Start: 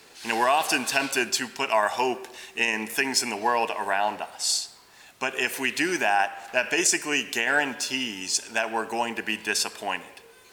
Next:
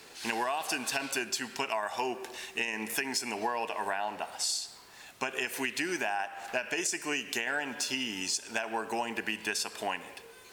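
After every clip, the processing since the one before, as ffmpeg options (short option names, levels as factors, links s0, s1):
-af "acompressor=threshold=0.0355:ratio=6"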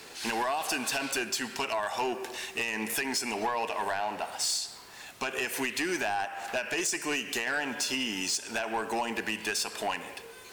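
-af "asoftclip=type=tanh:threshold=0.0398,volume=1.68"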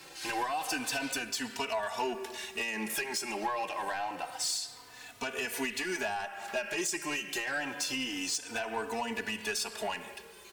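-filter_complex "[0:a]asplit=2[s0][s1];[s1]adelay=3.3,afreqshift=-0.27[s2];[s0][s2]amix=inputs=2:normalize=1"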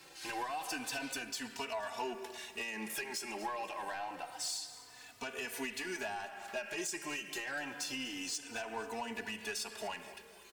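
-af "aecho=1:1:244|488|732|976:0.158|0.0634|0.0254|0.0101,volume=0.501"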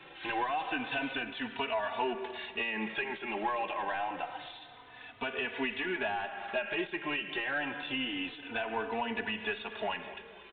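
-af "aresample=8000,aresample=44100,volume=2.11"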